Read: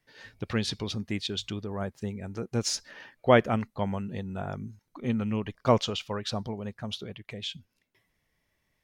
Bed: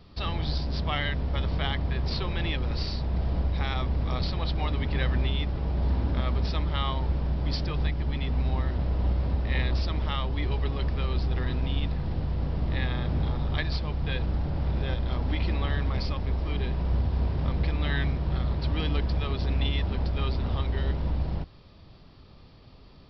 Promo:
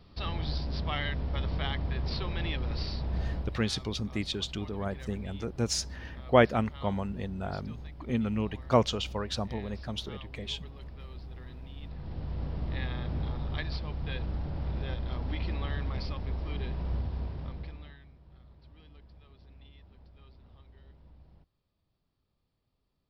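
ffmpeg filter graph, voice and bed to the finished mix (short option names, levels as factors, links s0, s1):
-filter_complex "[0:a]adelay=3050,volume=0.891[s0];[1:a]volume=2.24,afade=t=out:st=3.23:d=0.39:silence=0.223872,afade=t=in:st=11.77:d=0.61:silence=0.281838,afade=t=out:st=16.9:d=1.08:silence=0.0794328[s1];[s0][s1]amix=inputs=2:normalize=0"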